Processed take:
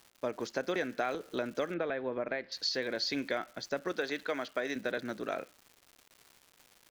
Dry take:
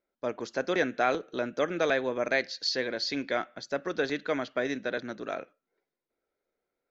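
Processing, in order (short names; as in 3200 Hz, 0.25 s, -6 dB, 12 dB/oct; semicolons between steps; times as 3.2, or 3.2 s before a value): 3.92–4.76 HPF 380 Hz 6 dB/oct; compressor 6:1, threshold -29 dBFS, peak gain reduction 9 dB; crackle 300/s -45 dBFS; 1.74–2.52 air absorption 390 m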